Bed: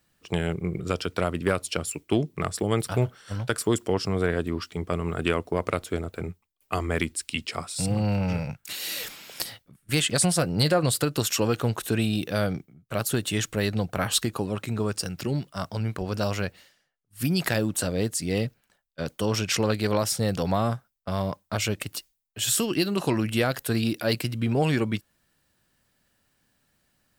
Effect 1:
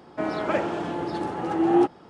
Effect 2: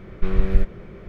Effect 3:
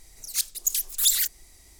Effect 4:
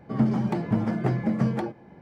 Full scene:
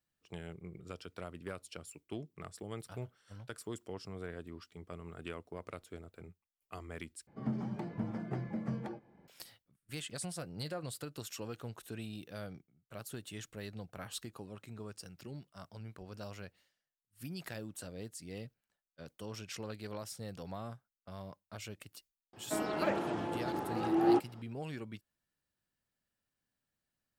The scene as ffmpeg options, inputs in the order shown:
ffmpeg -i bed.wav -i cue0.wav -i cue1.wav -i cue2.wav -i cue3.wav -filter_complex "[0:a]volume=-19dB,asplit=2[link_01][link_02];[link_01]atrim=end=7.274[link_03];[4:a]atrim=end=2.01,asetpts=PTS-STARTPTS,volume=-13.5dB[link_04];[link_02]atrim=start=9.276[link_05];[1:a]atrim=end=2.09,asetpts=PTS-STARTPTS,volume=-8dB,afade=type=in:duration=0.004:curve=hsin,afade=type=out:start_time=2.086:duration=0.004:curve=hsin,adelay=22330[link_06];[link_03][link_04]acrossfade=duration=0.004:curve1=hsin:curve2=hsin[link_07];[link_07][link_05]acrossfade=duration=0.004:curve1=hsin:curve2=hsin[link_08];[link_08][link_06]amix=inputs=2:normalize=0" out.wav

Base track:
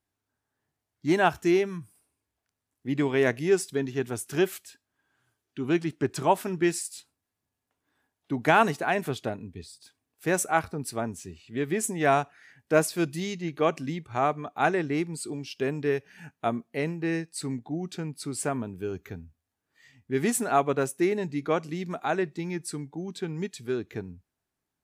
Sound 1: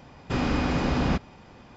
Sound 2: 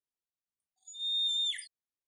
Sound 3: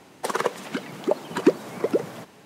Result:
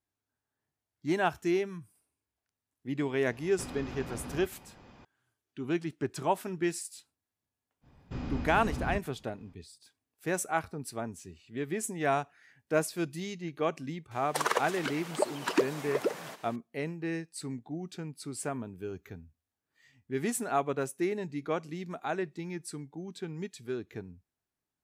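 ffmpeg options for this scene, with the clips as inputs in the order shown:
ffmpeg -i bed.wav -i cue0.wav -i cue1.wav -i cue2.wav -filter_complex "[1:a]asplit=2[link_01][link_02];[0:a]volume=-6dB[link_03];[link_01]acompressor=threshold=-33dB:ratio=6:attack=3.2:release=140:knee=1:detection=peak[link_04];[link_02]lowshelf=frequency=250:gain=11[link_05];[3:a]highpass=frequency=880:poles=1[link_06];[link_04]atrim=end=1.76,asetpts=PTS-STARTPTS,volume=-5.5dB,afade=type=in:duration=0.004:curve=hsin,afade=type=out:start_time=1.756:duration=0.004:curve=hsin,adelay=145089S[link_07];[link_05]atrim=end=1.76,asetpts=PTS-STARTPTS,volume=-17.5dB,afade=type=in:duration=0.05,afade=type=out:start_time=1.71:duration=0.05,adelay=7810[link_08];[link_06]atrim=end=2.45,asetpts=PTS-STARTPTS,volume=-0.5dB,afade=type=in:duration=0.004:curve=hsin,afade=type=out:start_time=2.446:duration=0.004:curve=hsin,adelay=14110[link_09];[link_03][link_07][link_08][link_09]amix=inputs=4:normalize=0" out.wav

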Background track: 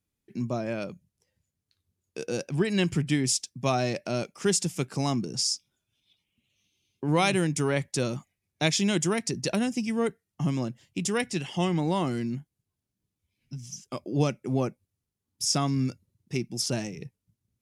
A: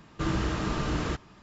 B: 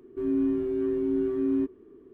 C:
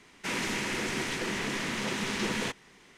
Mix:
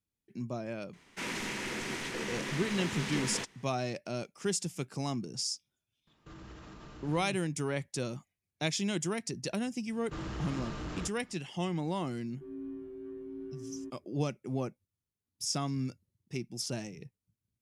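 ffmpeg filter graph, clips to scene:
ffmpeg -i bed.wav -i cue0.wav -i cue1.wav -i cue2.wav -filter_complex "[1:a]asplit=2[link_01][link_02];[0:a]volume=-7.5dB[link_03];[link_01]alimiter=level_in=1.5dB:limit=-24dB:level=0:latency=1:release=43,volume=-1.5dB[link_04];[link_02]aeval=exprs='0.15*sin(PI/2*1.78*val(0)/0.15)':channel_layout=same[link_05];[3:a]atrim=end=2.97,asetpts=PTS-STARTPTS,volume=-5dB,afade=type=in:duration=0.004:curve=hsin,afade=type=out:start_time=2.966:duration=0.004:curve=hsin,adelay=930[link_06];[link_04]atrim=end=1.42,asetpts=PTS-STARTPTS,volume=-16dB,afade=type=in:duration=0.004:curve=hsin,afade=type=out:start_time=1.416:duration=0.004:curve=hsin,adelay=6070[link_07];[link_05]atrim=end=1.42,asetpts=PTS-STARTPTS,volume=-17.5dB,afade=type=in:duration=0.004:curve=hsin,afade=type=out:start_time=1.416:duration=0.004:curve=hsin,adelay=9920[link_08];[2:a]atrim=end=2.13,asetpts=PTS-STARTPTS,volume=-16.5dB,afade=type=in:duration=0.004:curve=hsin,afade=type=out:start_time=2.126:duration=0.004:curve=hsin,adelay=12240[link_09];[link_03][link_06][link_07][link_08][link_09]amix=inputs=5:normalize=0" out.wav

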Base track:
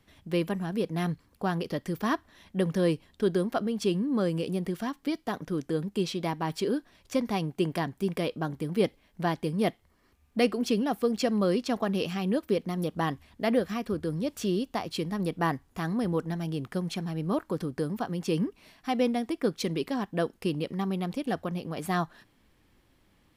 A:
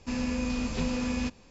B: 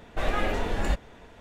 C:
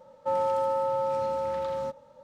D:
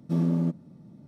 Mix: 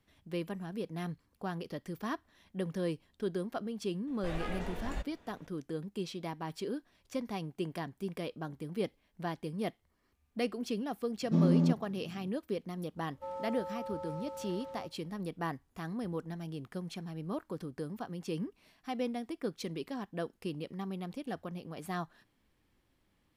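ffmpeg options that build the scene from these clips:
ffmpeg -i bed.wav -i cue0.wav -i cue1.wav -i cue2.wav -i cue3.wav -filter_complex "[0:a]volume=-9dB[link_01];[4:a]aresample=16000,aresample=44100[link_02];[2:a]atrim=end=1.4,asetpts=PTS-STARTPTS,volume=-12dB,afade=type=in:duration=0.004:curve=hsin,afade=type=out:start_time=1.396:duration=0.004:curve=hsin,adelay=4070[link_03];[link_02]atrim=end=1.07,asetpts=PTS-STARTPTS,volume=-1.5dB,afade=type=in:duration=0.004:curve=hsin,afade=type=out:start_time=1.066:duration=0.004:curve=hsin,adelay=494802S[link_04];[3:a]atrim=end=2.23,asetpts=PTS-STARTPTS,volume=-14.5dB,afade=type=in:duration=0.004:curve=hsin,afade=type=out:start_time=2.226:duration=0.004:curve=hsin,adelay=12960[link_05];[link_01][link_03][link_04][link_05]amix=inputs=4:normalize=0" out.wav

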